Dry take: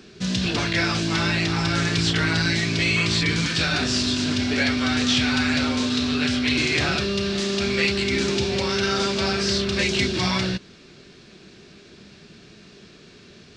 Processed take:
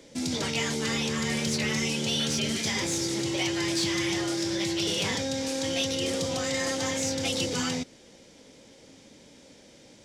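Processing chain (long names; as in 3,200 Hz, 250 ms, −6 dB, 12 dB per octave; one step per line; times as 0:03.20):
soft clipping −12.5 dBFS, distortion −24 dB
wrong playback speed 33 rpm record played at 45 rpm
level −5.5 dB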